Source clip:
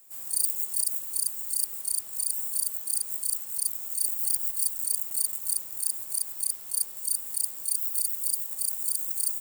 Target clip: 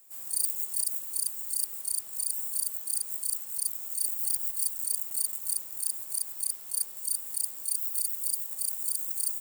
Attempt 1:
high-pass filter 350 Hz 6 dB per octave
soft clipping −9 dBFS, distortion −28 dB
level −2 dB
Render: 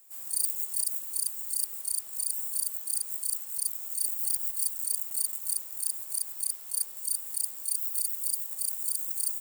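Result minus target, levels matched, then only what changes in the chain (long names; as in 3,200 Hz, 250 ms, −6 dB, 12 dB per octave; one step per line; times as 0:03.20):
125 Hz band −5.5 dB
change: high-pass filter 110 Hz 6 dB per octave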